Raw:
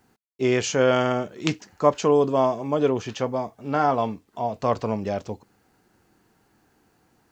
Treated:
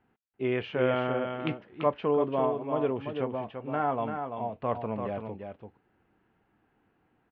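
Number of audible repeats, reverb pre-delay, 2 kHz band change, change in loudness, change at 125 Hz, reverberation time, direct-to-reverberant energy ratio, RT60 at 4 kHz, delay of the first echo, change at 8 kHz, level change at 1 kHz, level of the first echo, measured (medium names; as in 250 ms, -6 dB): 1, no reverb, -7.0 dB, -7.0 dB, -6.5 dB, no reverb, no reverb, no reverb, 339 ms, no reading, -6.5 dB, -6.5 dB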